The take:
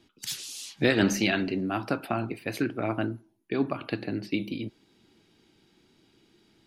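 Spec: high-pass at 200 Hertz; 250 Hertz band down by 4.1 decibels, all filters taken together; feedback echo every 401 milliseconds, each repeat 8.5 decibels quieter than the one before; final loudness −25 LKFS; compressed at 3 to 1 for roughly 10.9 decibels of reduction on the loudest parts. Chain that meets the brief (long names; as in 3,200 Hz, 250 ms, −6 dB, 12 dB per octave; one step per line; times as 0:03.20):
high-pass filter 200 Hz
parametric band 250 Hz −3.5 dB
downward compressor 3 to 1, threshold −35 dBFS
repeating echo 401 ms, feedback 38%, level −8.5 dB
level +13 dB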